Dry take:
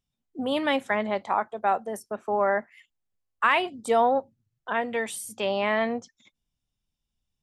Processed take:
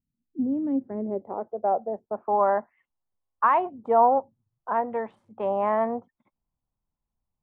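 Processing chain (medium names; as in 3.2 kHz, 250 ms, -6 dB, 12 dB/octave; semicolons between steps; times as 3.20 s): local Wiener filter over 9 samples; low-pass sweep 260 Hz -> 990 Hz, 0.62–2.33 s; trim -2 dB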